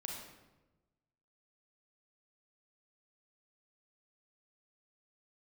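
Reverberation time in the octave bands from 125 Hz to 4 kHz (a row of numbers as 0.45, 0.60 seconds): 1.5, 1.3, 1.2, 1.0, 0.85, 0.75 seconds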